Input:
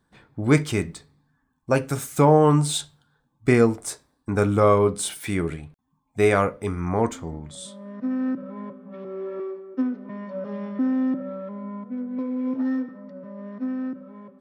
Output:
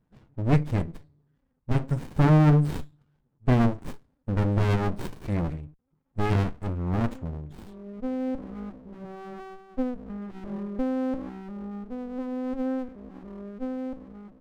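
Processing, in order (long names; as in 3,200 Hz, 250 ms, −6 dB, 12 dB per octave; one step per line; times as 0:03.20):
expanding power law on the bin magnitudes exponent 1.5
windowed peak hold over 65 samples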